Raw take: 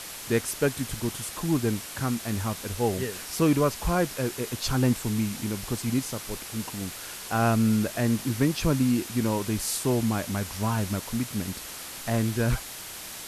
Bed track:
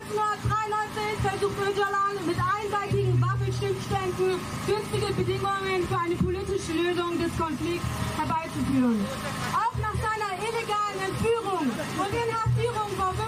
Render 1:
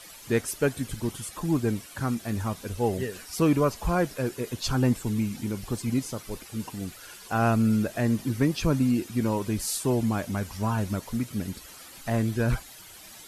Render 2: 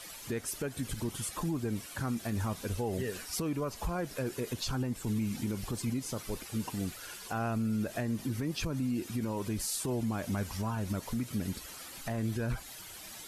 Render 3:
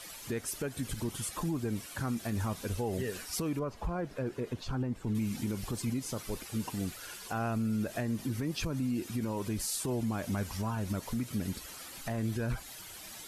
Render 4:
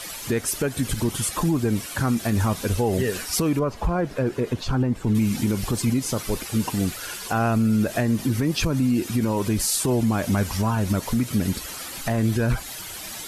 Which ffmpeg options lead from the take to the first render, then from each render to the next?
-af "afftdn=nr=12:nf=-40"
-af "acompressor=threshold=0.0447:ratio=4,alimiter=level_in=1.12:limit=0.0631:level=0:latency=1:release=56,volume=0.891"
-filter_complex "[0:a]asettb=1/sr,asplit=3[s0][s1][s2];[s0]atrim=end=3.594[s3];[s1]atrim=start=3.59:end=5.15,asetpts=PTS-STARTPTS,afade=t=in:d=0.004:c=qsin,afade=t=out:st=1.556:d=0.004:c=qsin,lowpass=f=1500:p=1[s4];[s2]atrim=start=5.146[s5];[s3][s4]acrossfade=d=0.004:c1=hsin:c2=qsin[s6];[s6][s5]acrossfade=d=0.004:c1=qsin:c2=hsin"
-af "volume=3.76"

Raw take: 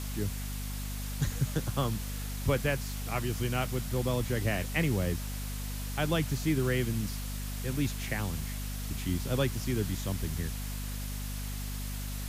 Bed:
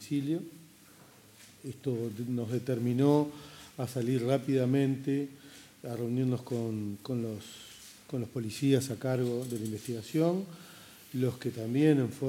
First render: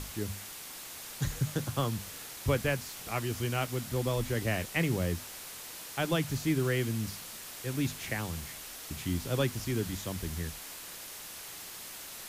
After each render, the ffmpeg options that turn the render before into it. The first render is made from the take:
-af "bandreject=f=50:t=h:w=6,bandreject=f=100:t=h:w=6,bandreject=f=150:t=h:w=6,bandreject=f=200:t=h:w=6,bandreject=f=250:t=h:w=6"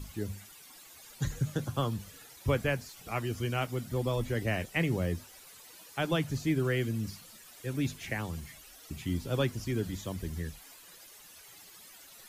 -af "afftdn=nr=13:nf=-45"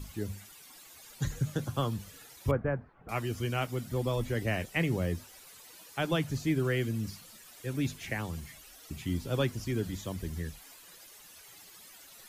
-filter_complex "[0:a]asettb=1/sr,asplit=3[s0][s1][s2];[s0]atrim=end=2.514[s3];[s1]atrim=start=2.51:end=3.09,asetpts=PTS-STARTPTS,afade=t=in:d=0.004:c=qsin,afade=t=out:st=0.576:d=0.004:c=qsin,lowpass=f=1500:w=0.5412,lowpass=f=1500:w=1.3066[s4];[s2]atrim=start=3.086[s5];[s3][s4]acrossfade=d=0.004:c1=hsin:c2=qsin[s6];[s6][s5]acrossfade=d=0.004:c1=qsin:c2=hsin"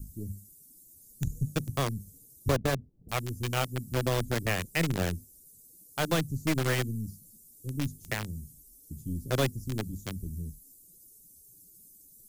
-filter_complex "[0:a]aeval=exprs='0.2*(cos(1*acos(clip(val(0)/0.2,-1,1)))-cos(1*PI/2))+0.0355*(cos(4*acos(clip(val(0)/0.2,-1,1)))-cos(4*PI/2))+0.00631*(cos(5*acos(clip(val(0)/0.2,-1,1)))-cos(5*PI/2))+0.00126*(cos(7*acos(clip(val(0)/0.2,-1,1)))-cos(7*PI/2))':c=same,acrossover=split=340|7400[s0][s1][s2];[s1]acrusher=bits=4:mix=0:aa=0.000001[s3];[s0][s3][s2]amix=inputs=3:normalize=0"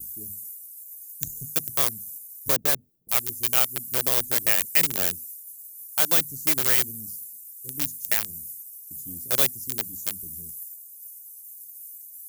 -af "agate=range=0.0224:threshold=0.00316:ratio=3:detection=peak,aemphasis=mode=production:type=riaa"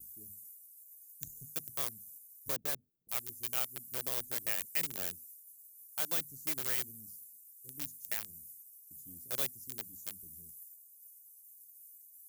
-af "volume=0.211"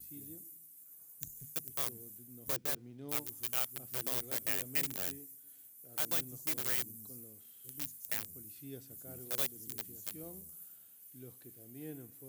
-filter_complex "[1:a]volume=0.0794[s0];[0:a][s0]amix=inputs=2:normalize=0"

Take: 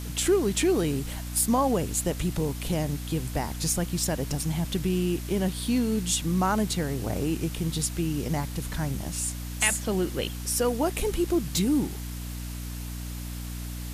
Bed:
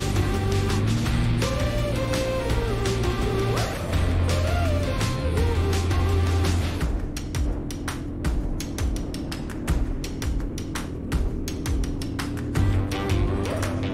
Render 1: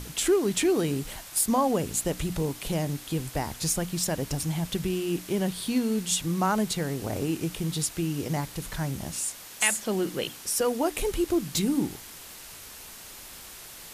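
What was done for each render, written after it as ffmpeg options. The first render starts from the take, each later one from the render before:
-af "bandreject=f=60:t=h:w=6,bandreject=f=120:t=h:w=6,bandreject=f=180:t=h:w=6,bandreject=f=240:t=h:w=6,bandreject=f=300:t=h:w=6"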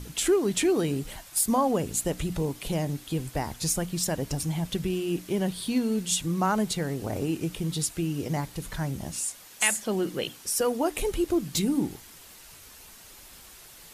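-af "afftdn=nr=6:nf=-45"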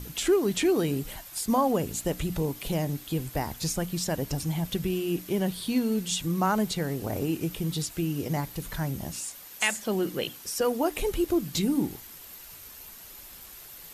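-filter_complex "[0:a]acrossover=split=7100[s0][s1];[s1]acompressor=threshold=0.00891:ratio=4:attack=1:release=60[s2];[s0][s2]amix=inputs=2:normalize=0,equalizer=f=13000:w=8:g=15"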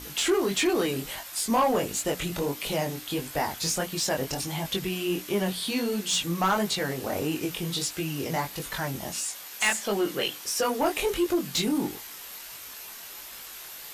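-filter_complex "[0:a]flanger=delay=19.5:depth=3.9:speed=1.5,asplit=2[s0][s1];[s1]highpass=f=720:p=1,volume=6.31,asoftclip=type=tanh:threshold=0.2[s2];[s0][s2]amix=inputs=2:normalize=0,lowpass=f=7100:p=1,volume=0.501"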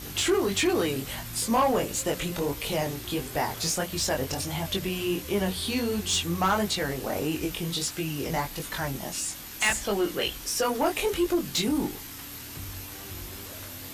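-filter_complex "[1:a]volume=0.112[s0];[0:a][s0]amix=inputs=2:normalize=0"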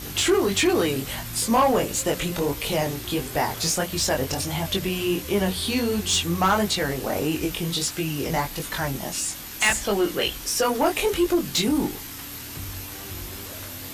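-af "volume=1.58"

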